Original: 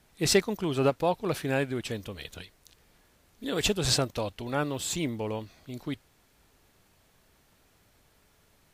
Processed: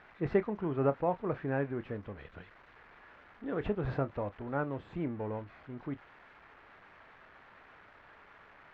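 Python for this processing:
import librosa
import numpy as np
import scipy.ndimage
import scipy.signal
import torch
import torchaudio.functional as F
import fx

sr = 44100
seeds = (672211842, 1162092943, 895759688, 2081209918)

y = x + 0.5 * 10.0 ** (-23.5 / 20.0) * np.diff(np.sign(x), prepend=np.sign(x[:1]))
y = scipy.signal.sosfilt(scipy.signal.butter(4, 1700.0, 'lowpass', fs=sr, output='sos'), y)
y = fx.doubler(y, sr, ms=29.0, db=-14.0)
y = F.gain(torch.from_numpy(y), -4.5).numpy()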